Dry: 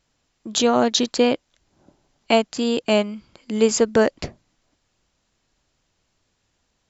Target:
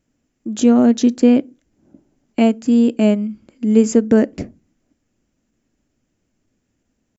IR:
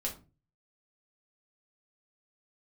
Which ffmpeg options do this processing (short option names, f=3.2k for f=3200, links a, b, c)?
-filter_complex "[0:a]atempo=0.96,equalizer=f=250:t=o:w=1:g=11,equalizer=f=1k:t=o:w=1:g=-8,equalizer=f=4k:t=o:w=1:g=-12,asplit=2[a][b];[1:a]atrim=start_sample=2205,asetrate=52920,aresample=44100[c];[b][c]afir=irnorm=-1:irlink=0,volume=-18.5dB[d];[a][d]amix=inputs=2:normalize=0,volume=-1dB"